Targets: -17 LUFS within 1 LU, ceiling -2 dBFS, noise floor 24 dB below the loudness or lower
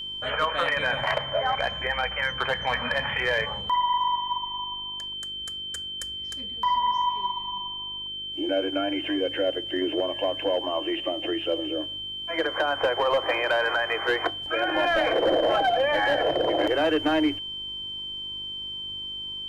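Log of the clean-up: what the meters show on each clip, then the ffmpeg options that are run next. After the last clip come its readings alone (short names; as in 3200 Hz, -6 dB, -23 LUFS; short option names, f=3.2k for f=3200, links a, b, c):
hum 50 Hz; harmonics up to 400 Hz; hum level -52 dBFS; steady tone 3100 Hz; tone level -32 dBFS; loudness -26.0 LUFS; peak -12.5 dBFS; loudness target -17.0 LUFS
-> -af "bandreject=f=50:t=h:w=4,bandreject=f=100:t=h:w=4,bandreject=f=150:t=h:w=4,bandreject=f=200:t=h:w=4,bandreject=f=250:t=h:w=4,bandreject=f=300:t=h:w=4,bandreject=f=350:t=h:w=4,bandreject=f=400:t=h:w=4"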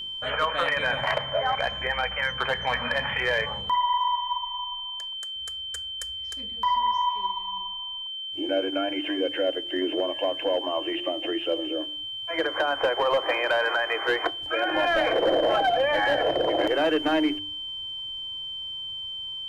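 hum none; steady tone 3100 Hz; tone level -32 dBFS
-> -af "bandreject=f=3.1k:w=30"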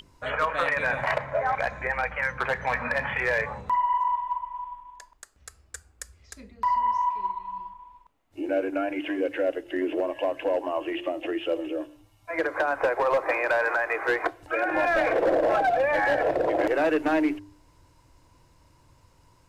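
steady tone none; loudness -26.0 LUFS; peak -13.0 dBFS; loudness target -17.0 LUFS
-> -af "volume=9dB"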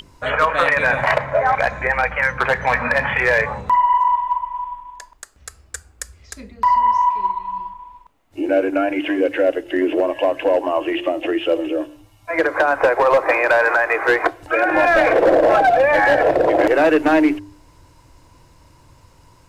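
loudness -17.0 LUFS; peak -4.0 dBFS; noise floor -51 dBFS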